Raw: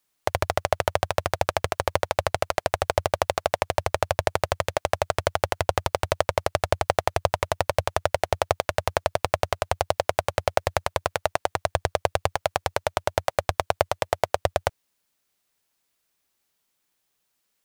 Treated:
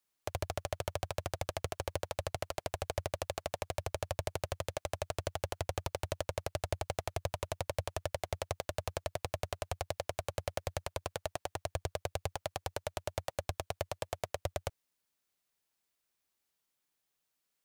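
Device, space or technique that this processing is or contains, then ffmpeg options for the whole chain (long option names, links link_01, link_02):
one-band saturation: -filter_complex "[0:a]acrossover=split=390|3300[link_01][link_02][link_03];[link_02]asoftclip=type=tanh:threshold=-21dB[link_04];[link_01][link_04][link_03]amix=inputs=3:normalize=0,volume=-8.5dB"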